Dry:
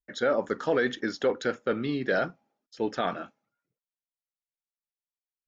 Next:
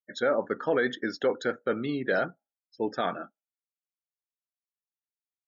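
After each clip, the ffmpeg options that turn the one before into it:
ffmpeg -i in.wav -af "afftdn=noise_reduction=35:noise_floor=-43,lowshelf=frequency=160:gain=-4" out.wav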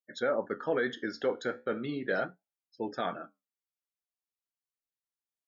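ffmpeg -i in.wav -af "flanger=delay=7.5:depth=8.4:regen=-67:speed=0.38:shape=sinusoidal" out.wav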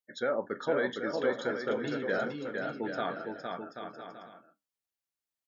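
ffmpeg -i in.wav -af "aecho=1:1:460|782|1007|1165|1276:0.631|0.398|0.251|0.158|0.1,volume=-1dB" out.wav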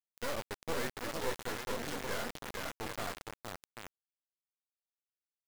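ffmpeg -i in.wav -af "aeval=exprs='max(val(0),0)':channel_layout=same,flanger=delay=7.6:depth=2.6:regen=53:speed=1.1:shape=sinusoidal,acrusher=bits=5:mix=0:aa=0.000001,volume=-1dB" out.wav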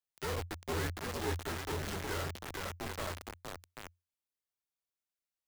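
ffmpeg -i in.wav -af "afreqshift=-88" out.wav

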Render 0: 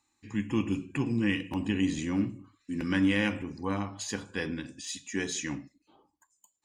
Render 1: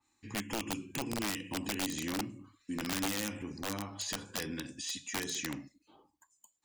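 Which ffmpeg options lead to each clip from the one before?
ffmpeg -i in.wav -filter_complex "[0:a]acrossover=split=310|4800[link_01][link_02][link_03];[link_01]acompressor=threshold=-41dB:ratio=4[link_04];[link_02]acompressor=threshold=-38dB:ratio=4[link_05];[link_03]acompressor=threshold=-47dB:ratio=4[link_06];[link_04][link_05][link_06]amix=inputs=3:normalize=0,aeval=exprs='(mod(28.2*val(0)+1,2)-1)/28.2':channel_layout=same,adynamicequalizer=threshold=0.00282:dfrequency=3000:dqfactor=0.7:tfrequency=3000:tqfactor=0.7:attack=5:release=100:ratio=0.375:range=2:mode=boostabove:tftype=highshelf" out.wav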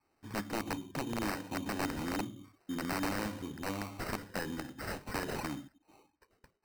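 ffmpeg -i in.wav -af "acrusher=samples=13:mix=1:aa=0.000001" out.wav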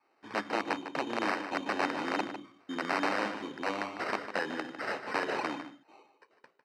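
ffmpeg -i in.wav -filter_complex "[0:a]highpass=390,lowpass=3700,asplit=2[link_01][link_02];[link_02]adelay=151.6,volume=-10dB,highshelf=frequency=4000:gain=-3.41[link_03];[link_01][link_03]amix=inputs=2:normalize=0,volume=7dB" out.wav

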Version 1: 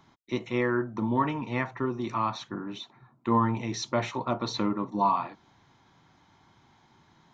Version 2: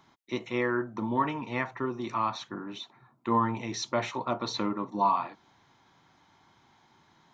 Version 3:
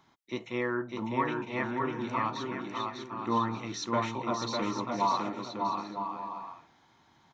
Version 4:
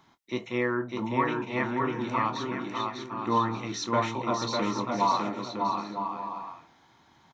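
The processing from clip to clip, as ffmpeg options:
ffmpeg -i in.wav -af "lowshelf=frequency=230:gain=-7" out.wav
ffmpeg -i in.wav -af "aecho=1:1:600|960|1176|1306|1383:0.631|0.398|0.251|0.158|0.1,volume=-3dB" out.wav
ffmpeg -i in.wav -filter_complex "[0:a]asplit=2[link_01][link_02];[link_02]adelay=24,volume=-12dB[link_03];[link_01][link_03]amix=inputs=2:normalize=0,volume=3dB" out.wav

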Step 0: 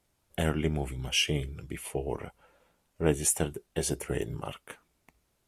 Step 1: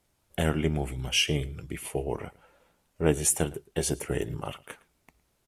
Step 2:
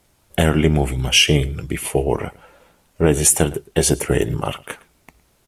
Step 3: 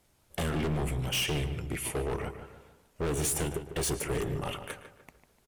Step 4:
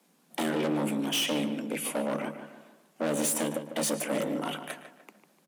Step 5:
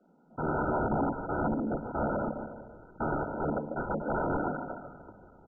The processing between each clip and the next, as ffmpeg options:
ffmpeg -i in.wav -filter_complex "[0:a]asplit=2[link_01][link_02];[link_02]adelay=110.8,volume=-21dB,highshelf=frequency=4000:gain=-2.49[link_03];[link_01][link_03]amix=inputs=2:normalize=0,volume=2dB" out.wav
ffmpeg -i in.wav -af "alimiter=level_in=13dB:limit=-1dB:release=50:level=0:latency=1,volume=-1dB" out.wav
ffmpeg -i in.wav -filter_complex "[0:a]volume=20dB,asoftclip=hard,volume=-20dB,asplit=2[link_01][link_02];[link_02]adelay=149,lowpass=frequency=2400:poles=1,volume=-9.5dB,asplit=2[link_03][link_04];[link_04]adelay=149,lowpass=frequency=2400:poles=1,volume=0.43,asplit=2[link_05][link_06];[link_06]adelay=149,lowpass=frequency=2400:poles=1,volume=0.43,asplit=2[link_07][link_08];[link_08]adelay=149,lowpass=frequency=2400:poles=1,volume=0.43,asplit=2[link_09][link_10];[link_10]adelay=149,lowpass=frequency=2400:poles=1,volume=0.43[link_11];[link_01][link_03][link_05][link_07][link_09][link_11]amix=inputs=6:normalize=0,volume=-8dB" out.wav
ffmpeg -i in.wav -af "afreqshift=150,volume=1.5dB" out.wav
ffmpeg -i in.wav -filter_complex "[0:a]aeval=exprs='(mod(20*val(0)+1,2)-1)/20':channel_layout=same,asplit=5[link_01][link_02][link_03][link_04][link_05];[link_02]adelay=370,afreqshift=-100,volume=-19.5dB[link_06];[link_03]adelay=740,afreqshift=-200,volume=-24.7dB[link_07];[link_04]adelay=1110,afreqshift=-300,volume=-29.9dB[link_08];[link_05]adelay=1480,afreqshift=-400,volume=-35.1dB[link_09];[link_01][link_06][link_07][link_08][link_09]amix=inputs=5:normalize=0,volume=4dB" -ar 16000 -c:a mp2 -b:a 8k out.mp2

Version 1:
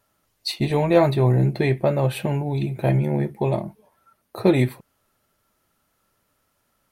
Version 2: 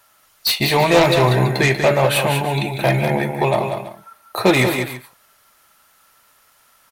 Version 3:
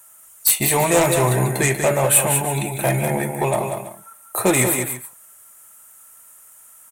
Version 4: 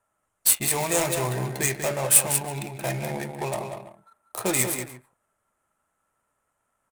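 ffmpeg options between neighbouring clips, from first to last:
ffmpeg -i in.wav -filter_complex "[0:a]acrossover=split=720[link_01][link_02];[link_02]aeval=exprs='0.224*sin(PI/2*3.55*val(0)/0.224)':channel_layout=same[link_03];[link_01][link_03]amix=inputs=2:normalize=0,aecho=1:1:42|155|190|330:0.133|0.168|0.447|0.158" out.wav
ffmpeg -i in.wav -filter_complex "[0:a]highshelf=frequency=6200:width_type=q:width=3:gain=11,asplit=2[link_01][link_02];[link_02]asoftclip=type=tanh:threshold=-15dB,volume=-9.5dB[link_03];[link_01][link_03]amix=inputs=2:normalize=0,volume=-4.5dB" out.wav
ffmpeg -i in.wav -af "adynamicsmooth=sensitivity=3:basefreq=1100,aemphasis=mode=production:type=75kf,volume=-9.5dB" out.wav

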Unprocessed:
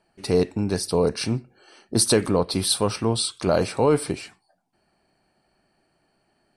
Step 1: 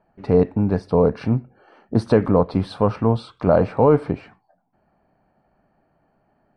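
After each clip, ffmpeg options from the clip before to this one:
ffmpeg -i in.wav -af "lowpass=1200,equalizer=frequency=360:width=4.1:gain=-7.5,volume=6dB" out.wav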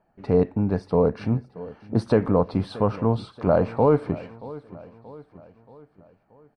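ffmpeg -i in.wav -af "aecho=1:1:629|1258|1887|2516:0.119|0.0606|0.0309|0.0158,volume=-3.5dB" out.wav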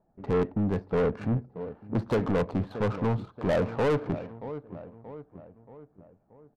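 ffmpeg -i in.wav -af "asoftclip=type=tanh:threshold=-20.5dB,adynamicsmooth=sensitivity=6.5:basefreq=830" out.wav

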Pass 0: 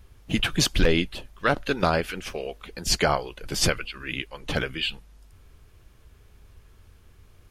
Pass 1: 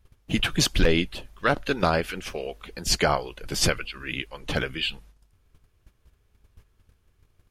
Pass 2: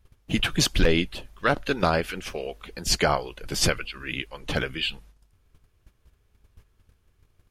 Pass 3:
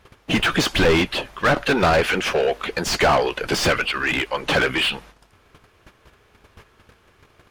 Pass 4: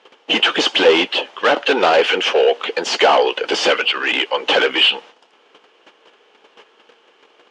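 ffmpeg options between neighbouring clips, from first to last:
ffmpeg -i in.wav -af "agate=range=-12dB:threshold=-48dB:ratio=16:detection=peak" out.wav
ffmpeg -i in.wav -af anull out.wav
ffmpeg -i in.wav -filter_complex "[0:a]asplit=2[link_01][link_02];[link_02]highpass=frequency=720:poles=1,volume=29dB,asoftclip=type=tanh:threshold=-8dB[link_03];[link_01][link_03]amix=inputs=2:normalize=0,lowpass=frequency=1800:poles=1,volume=-6dB" out.wav
ffmpeg -i in.wav -af "highpass=frequency=270:width=0.5412,highpass=frequency=270:width=1.3066,equalizer=frequency=480:width_type=q:width=4:gain=7,equalizer=frequency=840:width_type=q:width=4:gain=6,equalizer=frequency=3000:width_type=q:width=4:gain=10,lowpass=frequency=7100:width=0.5412,lowpass=frequency=7100:width=1.3066,volume=1dB" out.wav

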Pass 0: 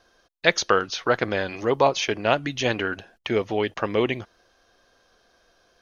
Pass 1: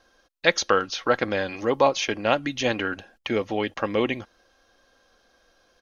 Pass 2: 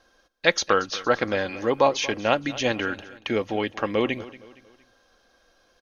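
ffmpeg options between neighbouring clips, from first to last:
ffmpeg -i in.wav -af "aecho=1:1:3.7:0.34,volume=-1dB" out.wav
ffmpeg -i in.wav -af "aecho=1:1:232|464|696:0.126|0.0516|0.0212" out.wav

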